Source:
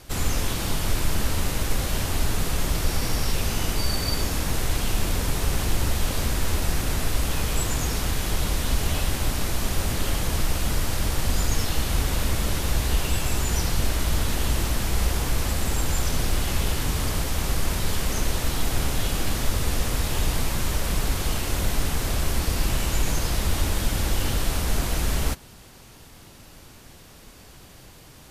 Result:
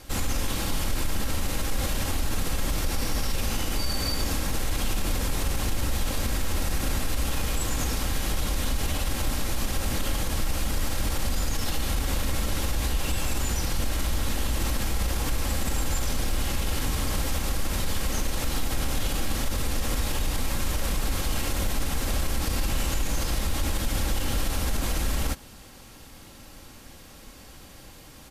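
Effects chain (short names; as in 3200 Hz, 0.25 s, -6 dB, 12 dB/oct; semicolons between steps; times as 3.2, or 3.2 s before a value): comb 3.7 ms, depth 32%; limiter -17 dBFS, peak gain reduction 9 dB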